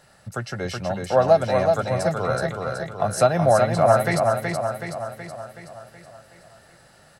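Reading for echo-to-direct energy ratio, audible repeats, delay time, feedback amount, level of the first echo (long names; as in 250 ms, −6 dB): −2.5 dB, 6, 374 ms, 55%, −4.0 dB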